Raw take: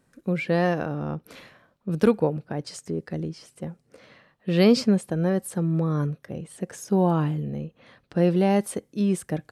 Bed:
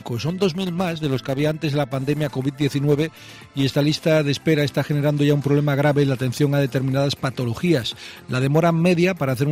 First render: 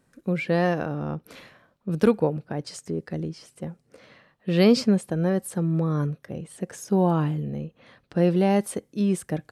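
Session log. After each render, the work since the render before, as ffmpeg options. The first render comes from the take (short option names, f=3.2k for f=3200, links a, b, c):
-af anull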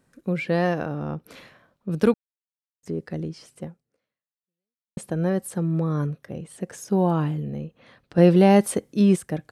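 -filter_complex "[0:a]asplit=6[a][b][c][d][e][f];[a]atrim=end=2.14,asetpts=PTS-STARTPTS,afade=t=out:st=2.136:d=0.004:c=hsin[g];[b]atrim=start=2.14:end=2.83,asetpts=PTS-STARTPTS,volume=0[h];[c]atrim=start=2.83:end=4.97,asetpts=PTS-STARTPTS,afade=t=in:d=0.004:c=hsin,afade=t=out:st=0.8:d=1.34:c=exp[i];[d]atrim=start=4.97:end=8.182,asetpts=PTS-STARTPTS,afade=t=in:d=0.004:c=hsin[j];[e]atrim=start=8.178:end=9.162,asetpts=PTS-STARTPTS,volume=5.5dB[k];[f]atrim=start=9.158[l];[g][h][i][j]concat=n=4:v=0:a=1[m];[m][k]acrossfade=d=0.004:c1=hsin:c2=hsin[n];[n][l]acrossfade=d=0.004:c1=hsin:c2=hsin"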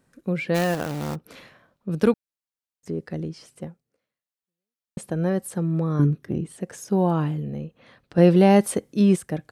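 -filter_complex "[0:a]asplit=3[a][b][c];[a]afade=t=out:st=0.54:d=0.02[d];[b]acrusher=bits=2:mode=log:mix=0:aa=0.000001,afade=t=in:st=0.54:d=0.02,afade=t=out:st=1.14:d=0.02[e];[c]afade=t=in:st=1.14:d=0.02[f];[d][e][f]amix=inputs=3:normalize=0,asettb=1/sr,asplit=3[g][h][i];[g]atrim=end=5.994[j];[h]atrim=start=5.99:end=6.52,asetpts=PTS-STARTPTS,afade=t=in:d=0.004:c=qsin,afade=t=out:st=0.526:d=0.004:c=qsin,lowshelf=f=440:t=q:w=3:g=6.5[k];[i]atrim=start=6.516[l];[j][k]acrossfade=d=0.004:c1=hsin:c2=qsin[m];[m][l]acrossfade=d=0.004:c1=qsin:c2=hsin"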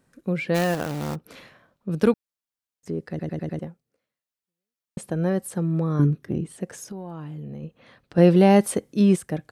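-filter_complex "[0:a]asplit=3[a][b][c];[a]afade=t=out:st=6.8:d=0.02[d];[b]acompressor=threshold=-32dB:ratio=12:attack=3.2:release=140:knee=1:detection=peak,afade=t=in:st=6.8:d=0.02,afade=t=out:st=7.62:d=0.02[e];[c]afade=t=in:st=7.62:d=0.02[f];[d][e][f]amix=inputs=3:normalize=0,asplit=6[g][h][i][j][k][l];[g]atrim=end=3.192[m];[h]atrim=start=3.088:end=3.192[n];[i]atrim=start=3.088:end=3.192[o];[j]atrim=start=3.088:end=3.192[p];[k]atrim=start=3.088:end=3.192[q];[l]atrim=start=3.588[r];[m][n]acrossfade=d=0.004:c1=hsin:c2=hsin[s];[s][o]acrossfade=d=0.004:c1=hsin:c2=hsin[t];[t][p]acrossfade=d=0.004:c1=hsin:c2=hsin[u];[u][q]acrossfade=d=0.004:c1=hsin:c2=hsin[v];[v][r]acrossfade=d=0.004:c1=hsin:c2=hsin"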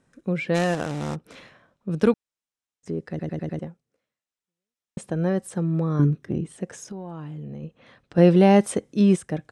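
-af "lowpass=f=9.2k:w=0.5412,lowpass=f=9.2k:w=1.3066,bandreject=f=4.5k:w=12"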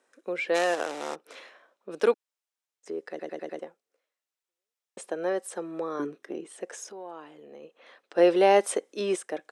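-af "highpass=f=380:w=0.5412,highpass=f=380:w=1.3066"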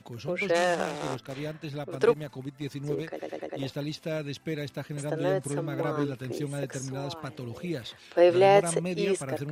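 -filter_complex "[1:a]volume=-15dB[a];[0:a][a]amix=inputs=2:normalize=0"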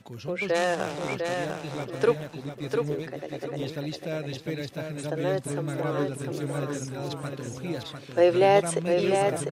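-af "aecho=1:1:700|1400|2100:0.562|0.146|0.038"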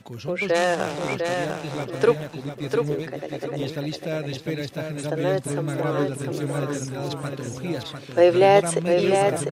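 -af "volume=4dB"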